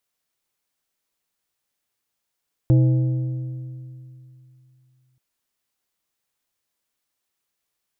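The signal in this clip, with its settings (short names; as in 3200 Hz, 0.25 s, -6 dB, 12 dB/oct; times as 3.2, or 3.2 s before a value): metal hit plate, length 2.48 s, lowest mode 128 Hz, decay 2.87 s, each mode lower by 9 dB, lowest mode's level -11 dB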